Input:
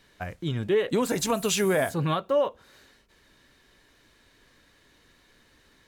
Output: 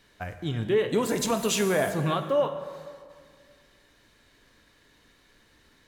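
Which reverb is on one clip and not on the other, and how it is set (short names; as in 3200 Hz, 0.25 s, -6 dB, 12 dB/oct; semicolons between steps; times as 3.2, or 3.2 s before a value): plate-style reverb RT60 2 s, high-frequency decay 0.65×, DRR 7.5 dB; gain -1 dB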